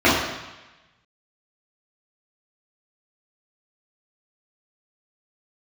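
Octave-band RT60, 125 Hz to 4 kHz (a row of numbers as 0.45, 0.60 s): 1.2, 0.95, 1.0, 1.1, 1.2, 1.1 s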